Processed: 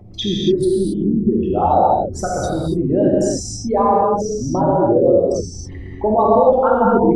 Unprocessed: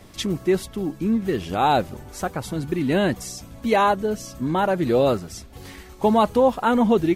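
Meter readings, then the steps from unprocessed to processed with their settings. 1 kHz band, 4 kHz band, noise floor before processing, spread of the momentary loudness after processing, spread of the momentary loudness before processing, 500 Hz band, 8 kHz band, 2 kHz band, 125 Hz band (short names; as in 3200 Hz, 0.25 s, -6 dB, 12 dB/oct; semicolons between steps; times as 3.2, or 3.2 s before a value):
+5.5 dB, +3.5 dB, -44 dBFS, 9 LU, 13 LU, +7.0 dB, +6.5 dB, -6.0 dB, +5.5 dB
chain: formant sharpening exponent 3; notch 1900 Hz, Q 23; in parallel at +1 dB: compressor, threshold -26 dBFS, peak gain reduction 12.5 dB; on the sum: non-linear reverb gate 0.3 s flat, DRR -5 dB; gain -3 dB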